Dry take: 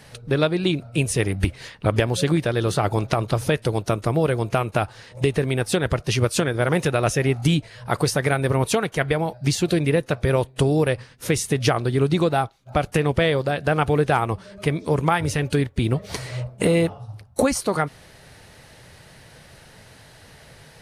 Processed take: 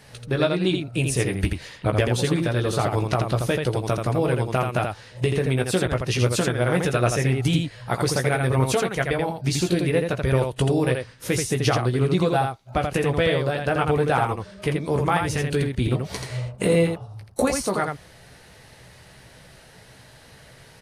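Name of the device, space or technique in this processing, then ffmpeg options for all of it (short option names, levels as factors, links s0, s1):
slapback doubling: -filter_complex "[0:a]asplit=3[s0][s1][s2];[s1]adelay=16,volume=0.501[s3];[s2]adelay=83,volume=0.596[s4];[s0][s3][s4]amix=inputs=3:normalize=0,volume=0.708"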